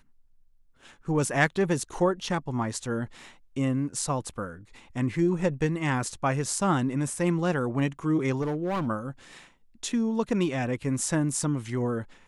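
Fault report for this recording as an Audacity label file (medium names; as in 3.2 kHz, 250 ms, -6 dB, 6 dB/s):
8.410000	8.870000	clipped -25 dBFS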